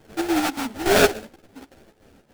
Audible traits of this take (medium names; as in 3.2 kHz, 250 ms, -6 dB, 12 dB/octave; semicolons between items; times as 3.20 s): chopped level 3.5 Hz, depth 65%, duty 70%; aliases and images of a low sample rate 1.1 kHz, jitter 20%; a shimmering, thickened sound